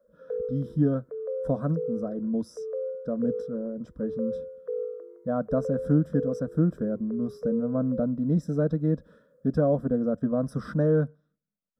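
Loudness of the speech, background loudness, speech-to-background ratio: -28.0 LUFS, -35.5 LUFS, 7.5 dB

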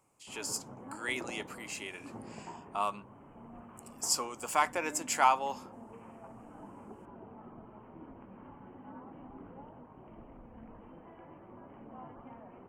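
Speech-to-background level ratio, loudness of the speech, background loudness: 17.5 dB, -33.0 LUFS, -50.5 LUFS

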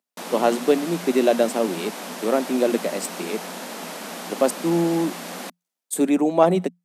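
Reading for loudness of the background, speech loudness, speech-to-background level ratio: -33.0 LUFS, -22.0 LUFS, 11.0 dB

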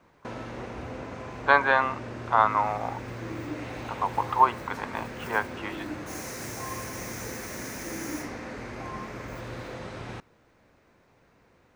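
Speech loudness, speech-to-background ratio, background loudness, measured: -26.0 LUFS, 11.5 dB, -37.5 LUFS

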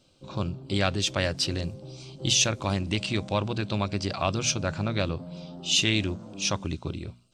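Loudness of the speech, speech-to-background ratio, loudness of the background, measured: -27.5 LUFS, 15.0 dB, -42.5 LUFS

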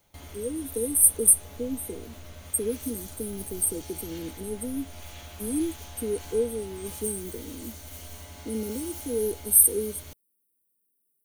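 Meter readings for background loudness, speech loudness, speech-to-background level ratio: -43.0 LUFS, -25.0 LUFS, 18.0 dB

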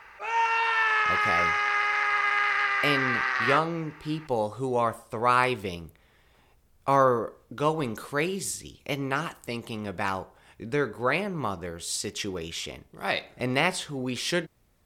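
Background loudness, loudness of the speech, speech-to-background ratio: -24.0 LUFS, -29.0 LUFS, -5.0 dB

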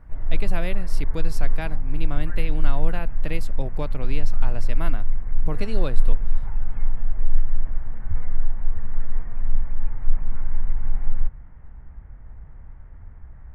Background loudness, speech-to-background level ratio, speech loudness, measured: -31.0 LUFS, -3.0 dB, -34.0 LUFS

